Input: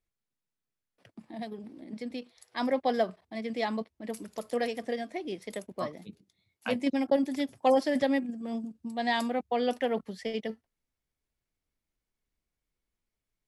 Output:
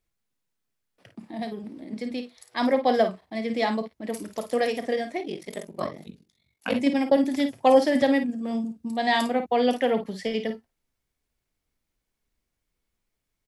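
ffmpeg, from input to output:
ffmpeg -i in.wav -filter_complex "[0:a]asplit=2[link_01][link_02];[link_02]aecho=0:1:32|53:0.178|0.335[link_03];[link_01][link_03]amix=inputs=2:normalize=0,asplit=3[link_04][link_05][link_06];[link_04]afade=type=out:start_time=5.21:duration=0.02[link_07];[link_05]aeval=exprs='val(0)*sin(2*PI*23*n/s)':channel_layout=same,afade=type=in:start_time=5.21:duration=0.02,afade=type=out:start_time=6.73:duration=0.02[link_08];[link_06]afade=type=in:start_time=6.73:duration=0.02[link_09];[link_07][link_08][link_09]amix=inputs=3:normalize=0,volume=5.5dB" out.wav

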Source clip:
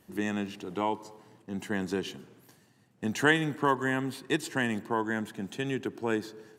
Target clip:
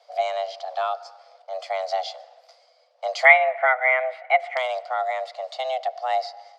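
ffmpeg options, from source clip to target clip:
ffmpeg -i in.wav -af "highpass=57,equalizer=frequency=310:width=2.3:gain=12.5,afreqshift=380,asetnsamples=nb_out_samples=441:pad=0,asendcmd='3.25 lowpass f 2100;4.57 lowpass f 4800',lowpass=frequency=4800:width_type=q:width=5.7,volume=-1.5dB" out.wav

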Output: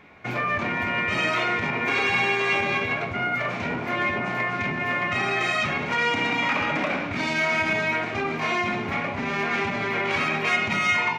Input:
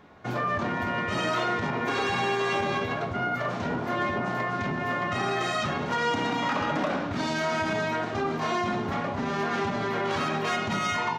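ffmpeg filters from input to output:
ffmpeg -i in.wav -af "equalizer=frequency=2300:width_type=o:width=0.48:gain=15" out.wav

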